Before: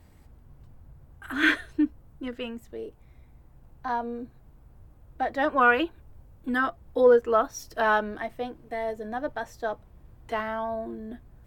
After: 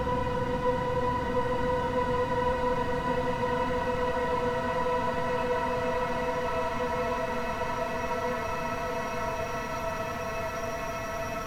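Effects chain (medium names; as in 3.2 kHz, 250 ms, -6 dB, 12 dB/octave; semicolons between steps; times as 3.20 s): comb filter that takes the minimum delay 7.4 ms; wind noise 180 Hz -28 dBFS; Paulstretch 21×, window 1.00 s, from 6.95 s; trim -5 dB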